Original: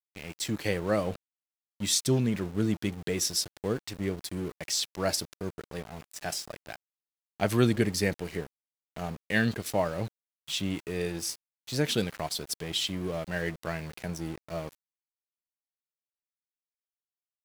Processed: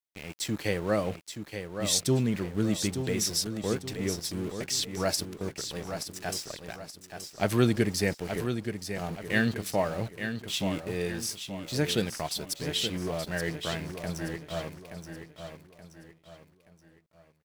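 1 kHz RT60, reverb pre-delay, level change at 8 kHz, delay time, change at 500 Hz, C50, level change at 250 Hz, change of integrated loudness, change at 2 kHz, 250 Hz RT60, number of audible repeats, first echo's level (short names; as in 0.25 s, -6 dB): none, none, +0.5 dB, 0.876 s, +0.5 dB, none, +1.0 dB, +0.5 dB, +0.5 dB, none, 4, -8.0 dB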